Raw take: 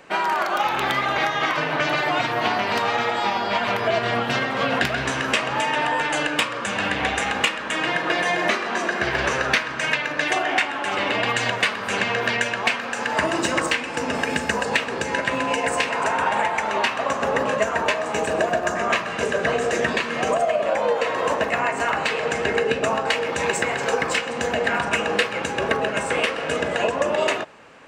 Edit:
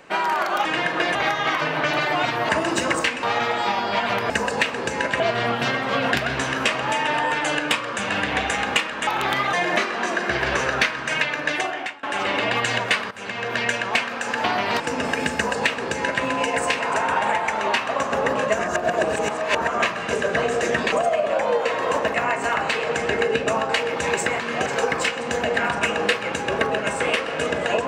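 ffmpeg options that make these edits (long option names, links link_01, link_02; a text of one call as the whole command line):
ffmpeg -i in.wav -filter_complex "[0:a]asplit=18[link_01][link_02][link_03][link_04][link_05][link_06][link_07][link_08][link_09][link_10][link_11][link_12][link_13][link_14][link_15][link_16][link_17][link_18];[link_01]atrim=end=0.652[link_19];[link_02]atrim=start=7.748:end=8.252[link_20];[link_03]atrim=start=1.108:end=2.452[link_21];[link_04]atrim=start=13.158:end=13.902[link_22];[link_05]atrim=start=2.808:end=3.882[link_23];[link_06]atrim=start=14.438:end=15.342[link_24];[link_07]atrim=start=3.878:end=7.752[link_25];[link_08]atrim=start=0.648:end=1.112[link_26];[link_09]atrim=start=8.248:end=10.75,asetpts=PTS-STARTPTS,afade=type=out:start_time=1.932:duration=0.57:silence=0.0707946[link_27];[link_10]atrim=start=10.75:end=11.83,asetpts=PTS-STARTPTS,afade=type=in:duration=0.004:curve=hsin:silence=0.0707946,afade=type=out:start_time=1.076:duration=0.004:curve=hsin:silence=0.141254[link_28];[link_11]atrim=start=11.83:end=13.162,asetpts=PTS-STARTPTS,afade=type=in:duration=0.6:silence=0.141254[link_29];[link_12]atrim=start=2.448:end=2.812[link_30];[link_13]atrim=start=13.898:end=17.692[link_31];[link_14]atrim=start=17.688:end=18.842,asetpts=PTS-STARTPTS,areverse[link_32];[link_15]atrim=start=18.838:end=20.022[link_33];[link_16]atrim=start=20.278:end=23.762[link_34];[link_17]atrim=start=20.018:end=20.282[link_35];[link_18]atrim=start=23.758[link_36];[link_19][link_20]acrossfade=duration=0.004:curve1=hsin:curve2=hsin[link_37];[link_37][link_21]acrossfade=duration=0.004:curve1=hsin:curve2=hsin[link_38];[link_38][link_22]acrossfade=duration=0.004:curve1=hsin:curve2=hsin[link_39];[link_39][link_23]acrossfade=duration=0.004:curve1=hsin:curve2=hsin[link_40];[link_40][link_24]acrossfade=duration=0.004:curve1=hsin:curve2=hsin[link_41];[link_41][link_25]acrossfade=duration=0.004:curve1=hsin:curve2=hsin[link_42];[link_42][link_26]acrossfade=duration=0.004:curve1=hsin:curve2=hsin[link_43];[link_27][link_28][link_29]concat=n=3:v=0:a=1[link_44];[link_43][link_44]acrossfade=duration=0.004:curve1=hsin:curve2=hsin[link_45];[link_45][link_30]acrossfade=duration=0.004:curve1=hsin:curve2=hsin[link_46];[link_46][link_31]acrossfade=duration=0.004:curve1=hsin:curve2=hsin[link_47];[link_47][link_32]acrossfade=duration=0.004:curve1=hsin:curve2=hsin[link_48];[link_48][link_33]acrossfade=duration=0.004:curve1=hsin:curve2=hsin[link_49];[link_49][link_34]acrossfade=duration=0.004:curve1=hsin:curve2=hsin[link_50];[link_50][link_35]acrossfade=duration=0.004:curve1=hsin:curve2=hsin[link_51];[link_51][link_36]acrossfade=duration=0.004:curve1=hsin:curve2=hsin" out.wav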